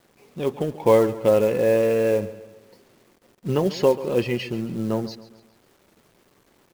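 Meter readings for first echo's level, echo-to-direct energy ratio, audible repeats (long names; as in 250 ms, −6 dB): −16.5 dB, −15.5 dB, 3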